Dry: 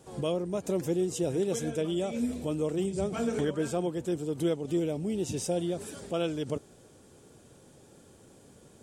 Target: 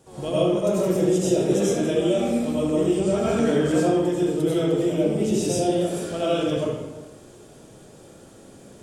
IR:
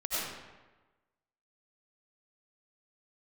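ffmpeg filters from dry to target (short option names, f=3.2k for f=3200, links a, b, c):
-filter_complex "[1:a]atrim=start_sample=2205[a];[0:a][a]afir=irnorm=-1:irlink=0,volume=2.5dB"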